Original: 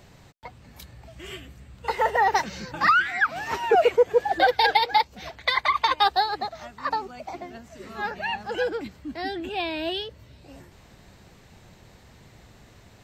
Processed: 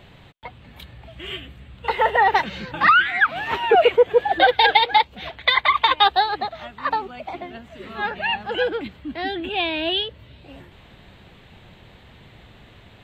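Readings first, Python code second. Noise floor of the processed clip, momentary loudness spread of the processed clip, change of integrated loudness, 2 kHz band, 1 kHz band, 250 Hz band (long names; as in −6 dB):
−49 dBFS, 18 LU, +4.5 dB, +5.0 dB, +4.0 dB, +3.5 dB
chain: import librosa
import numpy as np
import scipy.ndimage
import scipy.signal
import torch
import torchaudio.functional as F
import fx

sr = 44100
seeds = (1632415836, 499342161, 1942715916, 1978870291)

y = fx.high_shelf_res(x, sr, hz=4300.0, db=-8.5, q=3.0)
y = y * 10.0 ** (3.5 / 20.0)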